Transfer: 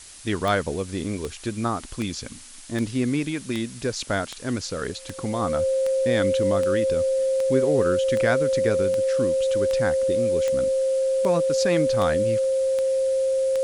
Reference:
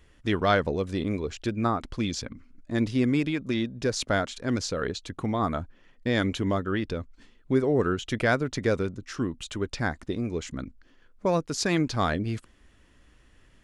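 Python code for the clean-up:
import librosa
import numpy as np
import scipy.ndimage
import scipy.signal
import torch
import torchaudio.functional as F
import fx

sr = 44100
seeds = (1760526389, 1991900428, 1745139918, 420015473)

y = fx.fix_declick_ar(x, sr, threshold=10.0)
y = fx.notch(y, sr, hz=530.0, q=30.0)
y = fx.noise_reduce(y, sr, print_start_s=2.21, print_end_s=2.71, reduce_db=19.0)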